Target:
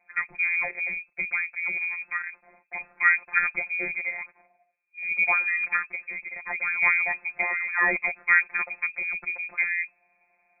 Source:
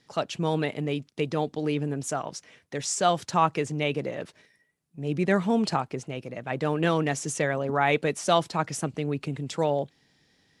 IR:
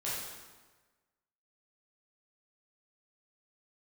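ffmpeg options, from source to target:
-af "afftfilt=real='hypot(re,im)*cos(PI*b)':imag='0':win_size=1024:overlap=0.75,lowpass=f=2.2k:t=q:w=0.5098,lowpass=f=2.2k:t=q:w=0.6013,lowpass=f=2.2k:t=q:w=0.9,lowpass=f=2.2k:t=q:w=2.563,afreqshift=-2600,volume=3.5dB"

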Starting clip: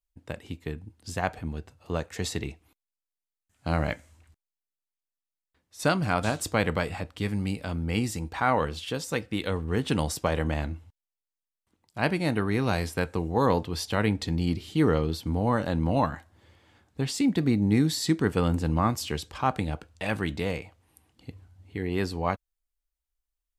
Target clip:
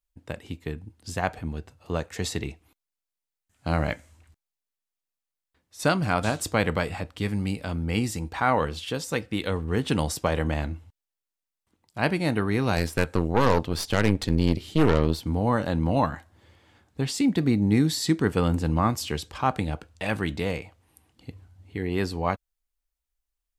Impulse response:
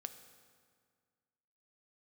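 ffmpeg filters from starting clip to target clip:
-filter_complex "[0:a]asettb=1/sr,asplit=3[a][b][c];[a]atrim=end=12.764[d];[b]atrim=start=12.76:end=15.26,asetpts=PTS-STARTPTS,afade=t=in:d=0.004:c=qsin,afade=t=out:st=2.496:d=0.004:c=qsin,aeval=exprs='0.282*(cos(1*acos(clip(val(0)/0.282,-1,1)))-cos(1*PI/2))+0.0501*(cos(6*acos(clip(val(0)/0.282,-1,1)))-cos(6*PI/2))':c=same[e];[c]atrim=start=15.256[f];[d][e]acrossfade=d=0.004:c1=hsin:c2=qsin[g];[g][f]acrossfade=d=0.004:c1=qsin:c2=hsin,volume=1.5dB"

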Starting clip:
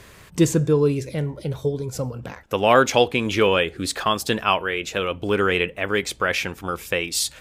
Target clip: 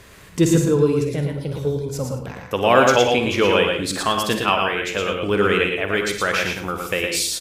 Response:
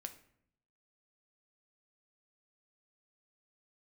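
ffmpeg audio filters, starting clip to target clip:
-filter_complex "[0:a]aecho=1:1:49|61|99:0.237|0.224|0.237,asplit=2[a][b];[1:a]atrim=start_sample=2205,adelay=114[c];[b][c]afir=irnorm=-1:irlink=0,volume=0dB[d];[a][d]amix=inputs=2:normalize=0"

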